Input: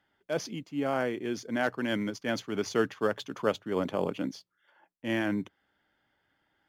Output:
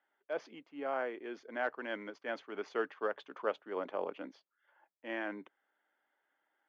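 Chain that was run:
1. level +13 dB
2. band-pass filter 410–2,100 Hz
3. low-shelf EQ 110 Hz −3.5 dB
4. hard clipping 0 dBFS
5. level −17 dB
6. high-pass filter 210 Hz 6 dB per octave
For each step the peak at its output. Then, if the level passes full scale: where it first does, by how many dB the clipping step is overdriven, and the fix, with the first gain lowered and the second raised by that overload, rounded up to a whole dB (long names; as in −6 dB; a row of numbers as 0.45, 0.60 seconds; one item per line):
−0.5, −2.5, −2.5, −2.5, −19.5, −20.0 dBFS
no step passes full scale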